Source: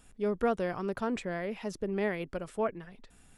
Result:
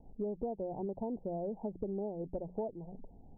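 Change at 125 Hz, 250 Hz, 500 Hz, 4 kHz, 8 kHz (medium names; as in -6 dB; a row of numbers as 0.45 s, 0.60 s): -4.0 dB, -4.5 dB, -5.5 dB, under -35 dB, under -25 dB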